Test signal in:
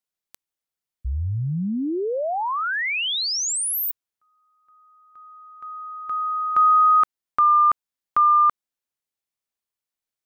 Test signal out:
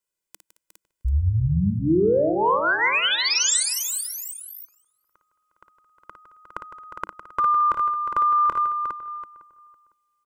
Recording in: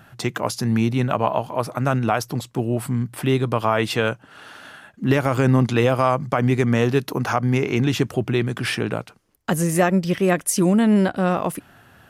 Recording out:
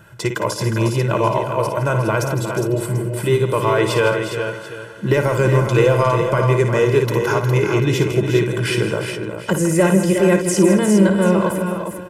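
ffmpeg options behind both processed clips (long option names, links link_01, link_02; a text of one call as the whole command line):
ffmpeg -i in.wav -filter_complex "[0:a]aecho=1:1:2:0.99,asplit=2[link_01][link_02];[link_02]adelay=505,lowpass=frequency=1800:poles=1,volume=-18.5dB,asplit=2[link_03][link_04];[link_04]adelay=505,lowpass=frequency=1800:poles=1,volume=0.22[link_05];[link_03][link_05]amix=inputs=2:normalize=0[link_06];[link_01][link_06]amix=inputs=2:normalize=0,asoftclip=type=tanh:threshold=-4dB,asplit=2[link_07][link_08];[link_08]aecho=0:1:56|159|219|358|409|739:0.376|0.251|0.119|0.335|0.422|0.141[link_09];[link_07][link_09]amix=inputs=2:normalize=0,acrossover=split=7800[link_10][link_11];[link_11]acompressor=threshold=-31dB:ratio=4:attack=1:release=60[link_12];[link_10][link_12]amix=inputs=2:normalize=0,equalizer=frequency=200:width_type=o:width=0.33:gain=8,equalizer=frequency=315:width_type=o:width=0.33:gain=9,equalizer=frequency=4000:width_type=o:width=0.33:gain=-4,equalizer=frequency=8000:width_type=o:width=0.33:gain=5,volume=-1dB" out.wav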